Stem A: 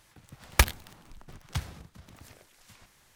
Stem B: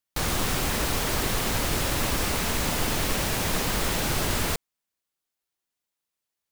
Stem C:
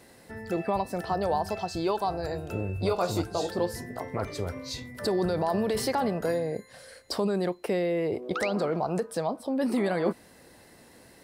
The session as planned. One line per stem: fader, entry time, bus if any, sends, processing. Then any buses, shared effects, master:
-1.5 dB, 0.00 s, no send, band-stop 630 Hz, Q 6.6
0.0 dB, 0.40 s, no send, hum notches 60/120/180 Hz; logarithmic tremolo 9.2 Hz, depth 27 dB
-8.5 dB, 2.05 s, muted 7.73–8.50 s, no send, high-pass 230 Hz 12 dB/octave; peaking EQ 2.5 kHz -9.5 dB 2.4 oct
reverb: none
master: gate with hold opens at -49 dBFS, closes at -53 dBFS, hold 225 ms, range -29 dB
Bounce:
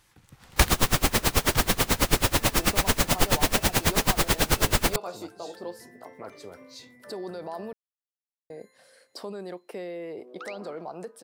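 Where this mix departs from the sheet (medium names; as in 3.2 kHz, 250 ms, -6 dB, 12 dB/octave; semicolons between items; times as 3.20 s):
stem B 0.0 dB -> +8.5 dB; stem C: missing peaking EQ 2.5 kHz -9.5 dB 2.4 oct; master: missing gate with hold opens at -49 dBFS, closes at -53 dBFS, hold 225 ms, range -29 dB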